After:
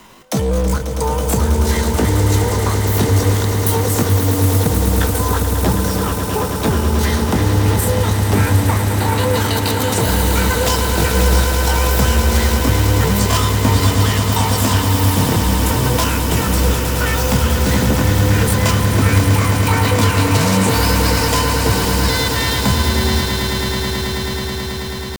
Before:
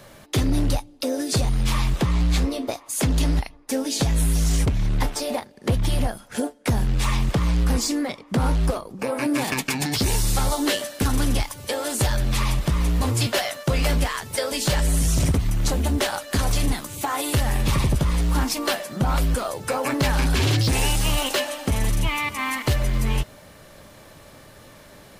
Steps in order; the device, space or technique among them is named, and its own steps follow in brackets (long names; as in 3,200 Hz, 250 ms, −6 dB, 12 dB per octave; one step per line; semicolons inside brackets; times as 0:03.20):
0:03.32–0:03.76: spectral tilt +3.5 dB per octave
chipmunk voice (pitch shifter +9.5 semitones)
echo that builds up and dies away 108 ms, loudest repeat 8, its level −9.5 dB
level +3.5 dB